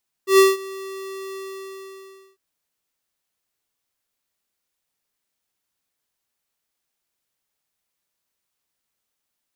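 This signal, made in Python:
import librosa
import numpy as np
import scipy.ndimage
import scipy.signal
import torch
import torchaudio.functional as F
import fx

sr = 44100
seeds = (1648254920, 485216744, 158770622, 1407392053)

y = fx.adsr_tone(sr, wave='square', hz=386.0, attack_ms=115.0, decay_ms=182.0, sustain_db=-22.5, held_s=1.09, release_ms=1010.0, level_db=-10.5)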